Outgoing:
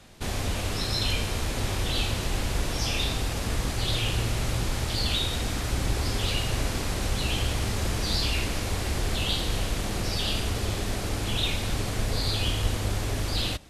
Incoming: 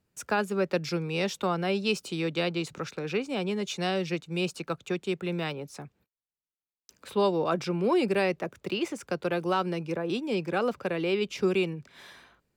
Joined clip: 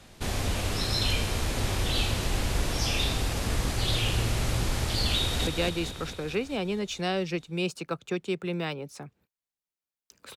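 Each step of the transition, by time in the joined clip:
outgoing
5.17–5.47 s: echo throw 220 ms, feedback 65%, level -5 dB
5.47 s: go over to incoming from 2.26 s

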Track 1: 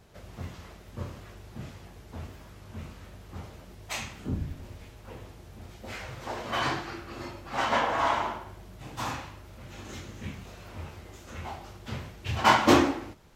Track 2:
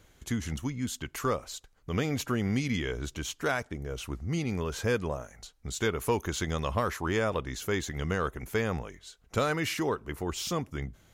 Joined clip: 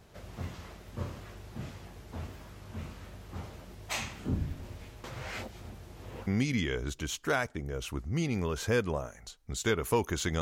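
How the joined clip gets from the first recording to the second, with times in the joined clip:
track 1
5.04–6.27 s: reverse
6.27 s: go over to track 2 from 2.43 s

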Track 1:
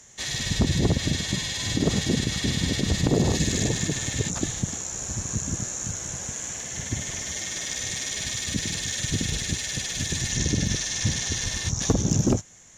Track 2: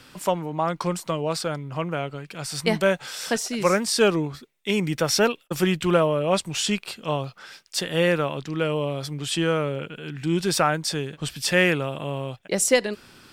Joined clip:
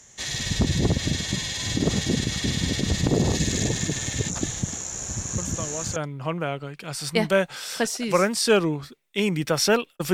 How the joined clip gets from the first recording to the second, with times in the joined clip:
track 1
5.38 s: add track 2 from 0.89 s 0.58 s -8 dB
5.96 s: go over to track 2 from 1.47 s

